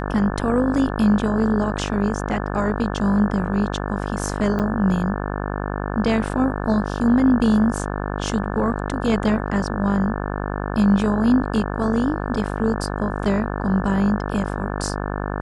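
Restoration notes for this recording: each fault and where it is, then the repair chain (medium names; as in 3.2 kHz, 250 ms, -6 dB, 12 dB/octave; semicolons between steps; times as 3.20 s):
buzz 50 Hz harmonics 35 -26 dBFS
4.59–4.60 s: dropout 7.8 ms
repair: de-hum 50 Hz, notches 35; interpolate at 4.59 s, 7.8 ms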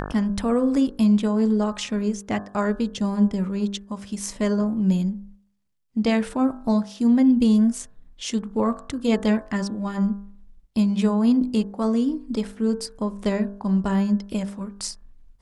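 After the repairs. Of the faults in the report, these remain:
nothing left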